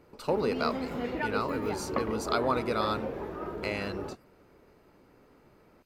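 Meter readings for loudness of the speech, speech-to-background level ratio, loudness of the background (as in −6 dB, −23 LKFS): −32.5 LKFS, 3.0 dB, −35.5 LKFS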